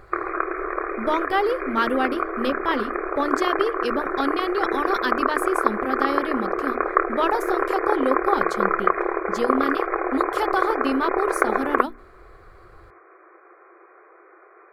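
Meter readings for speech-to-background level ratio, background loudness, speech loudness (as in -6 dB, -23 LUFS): -2.0 dB, -24.5 LUFS, -26.5 LUFS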